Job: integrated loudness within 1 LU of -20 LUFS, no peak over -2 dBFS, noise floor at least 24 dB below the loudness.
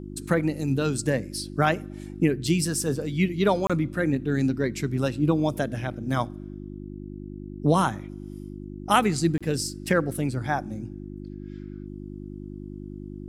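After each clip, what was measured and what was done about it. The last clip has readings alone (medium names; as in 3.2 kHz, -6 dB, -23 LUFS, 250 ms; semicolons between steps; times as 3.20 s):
dropouts 2; longest dropout 26 ms; hum 50 Hz; highest harmonic 350 Hz; hum level -36 dBFS; loudness -25.5 LUFS; peak level -6.5 dBFS; loudness target -20.0 LUFS
-> interpolate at 3.67/9.38 s, 26 ms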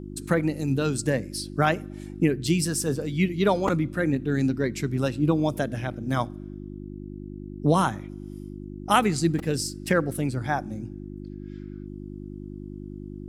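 dropouts 0; hum 50 Hz; highest harmonic 350 Hz; hum level -36 dBFS
-> de-hum 50 Hz, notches 7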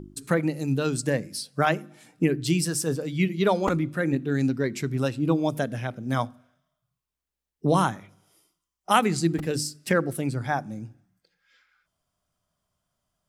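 hum not found; loudness -26.0 LUFS; peak level -6.5 dBFS; loudness target -20.0 LUFS
-> trim +6 dB; peak limiter -2 dBFS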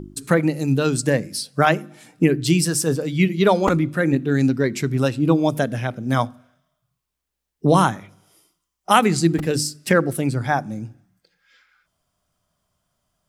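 loudness -20.0 LUFS; peak level -2.0 dBFS; noise floor -81 dBFS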